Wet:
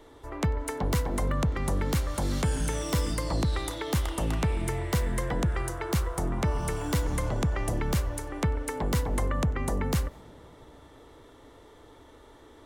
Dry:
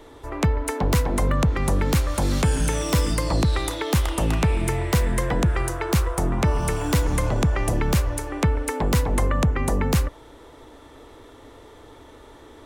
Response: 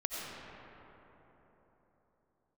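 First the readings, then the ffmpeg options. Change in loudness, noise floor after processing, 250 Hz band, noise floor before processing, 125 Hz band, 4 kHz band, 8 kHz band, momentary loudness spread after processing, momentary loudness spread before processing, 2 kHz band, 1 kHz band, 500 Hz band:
−6.5 dB, −53 dBFS, −6.5 dB, −47 dBFS, −6.5 dB, −6.5 dB, −6.5 dB, 3 LU, 3 LU, −7.0 dB, −6.5 dB, −6.5 dB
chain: -filter_complex "[0:a]bandreject=frequency=2500:width=15,asplit=2[link_01][link_02];[1:a]atrim=start_sample=2205,adelay=95[link_03];[link_02][link_03]afir=irnorm=-1:irlink=0,volume=-26dB[link_04];[link_01][link_04]amix=inputs=2:normalize=0,volume=-6.5dB"

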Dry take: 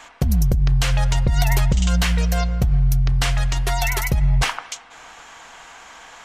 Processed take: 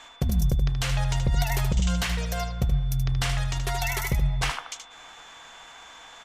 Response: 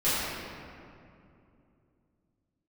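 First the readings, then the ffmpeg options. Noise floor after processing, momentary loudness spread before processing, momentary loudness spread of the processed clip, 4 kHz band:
−48 dBFS, 3 LU, 19 LU, −5.0 dB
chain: -af "aecho=1:1:77:0.422,aeval=exprs='val(0)+0.00631*sin(2*PI*3500*n/s)':channel_layout=same,volume=-6dB"

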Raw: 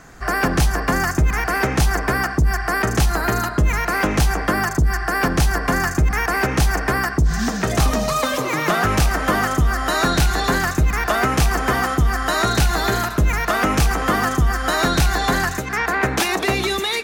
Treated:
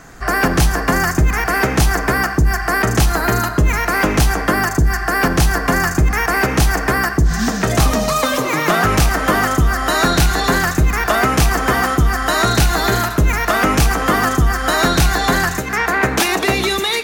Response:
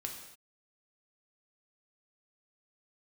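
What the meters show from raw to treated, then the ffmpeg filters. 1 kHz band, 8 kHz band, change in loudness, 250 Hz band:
+3.5 dB, +4.5 dB, +3.5 dB, +3.5 dB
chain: -filter_complex "[0:a]highshelf=frequency=12000:gain=3.5,asplit=2[link_01][link_02];[1:a]atrim=start_sample=2205,afade=type=out:start_time=0.22:duration=0.01,atrim=end_sample=10143[link_03];[link_02][link_03]afir=irnorm=-1:irlink=0,volume=-6.5dB[link_04];[link_01][link_04]amix=inputs=2:normalize=0,volume=1dB"

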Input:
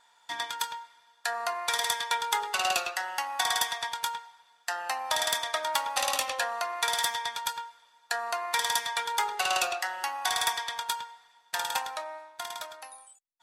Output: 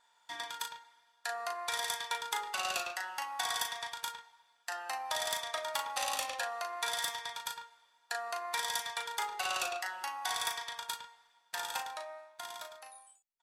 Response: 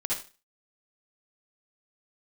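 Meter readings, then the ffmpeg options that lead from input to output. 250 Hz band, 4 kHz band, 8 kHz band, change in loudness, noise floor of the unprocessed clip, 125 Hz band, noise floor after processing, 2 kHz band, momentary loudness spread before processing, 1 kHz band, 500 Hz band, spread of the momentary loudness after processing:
−6.5 dB, −7.0 dB, −6.5 dB, −7.0 dB, −64 dBFS, can't be measured, −71 dBFS, −6.5 dB, 12 LU, −7.5 dB, −6.0 dB, 12 LU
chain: -filter_complex "[0:a]asplit=2[link_01][link_02];[link_02]adelay=37,volume=-6dB[link_03];[link_01][link_03]amix=inputs=2:normalize=0,volume=-7.5dB"

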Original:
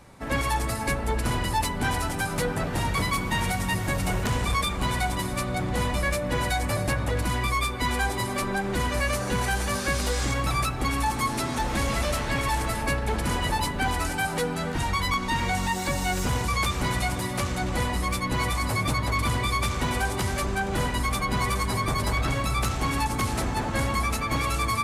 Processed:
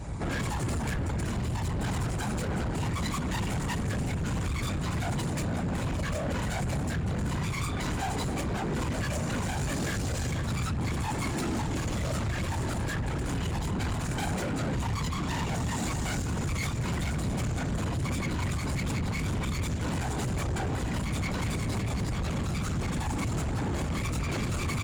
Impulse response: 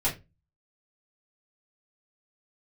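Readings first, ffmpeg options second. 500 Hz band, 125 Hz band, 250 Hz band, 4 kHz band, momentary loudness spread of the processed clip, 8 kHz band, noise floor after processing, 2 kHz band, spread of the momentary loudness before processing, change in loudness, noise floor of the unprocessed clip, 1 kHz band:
−6.0 dB, −1.0 dB, −1.5 dB, −8.0 dB, 1 LU, −6.0 dB, −32 dBFS, −8.5 dB, 2 LU, −4.5 dB, −30 dBFS, −9.5 dB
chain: -filter_complex "[0:a]asplit=2[link_01][link_02];[link_02]adelay=15,volume=-8dB[link_03];[link_01][link_03]amix=inputs=2:normalize=0,aresample=22050,aresample=44100,asplit=2[link_04][link_05];[1:a]atrim=start_sample=2205,lowshelf=frequency=440:gain=7[link_06];[link_05][link_06]afir=irnorm=-1:irlink=0,volume=-13.5dB[link_07];[link_04][link_07]amix=inputs=2:normalize=0,volume=26dB,asoftclip=hard,volume=-26dB,lowshelf=frequency=170:gain=9.5,afftfilt=real='hypot(re,im)*cos(2*PI*random(0))':imag='hypot(re,im)*sin(2*PI*random(1))':win_size=512:overlap=0.75,alimiter=level_in=1.5dB:limit=-24dB:level=0:latency=1:release=345,volume=-1.5dB,highpass=42,equalizer=frequency=7100:width=7.3:gain=8.5,asoftclip=type=tanh:threshold=-34dB,volume=8.5dB"

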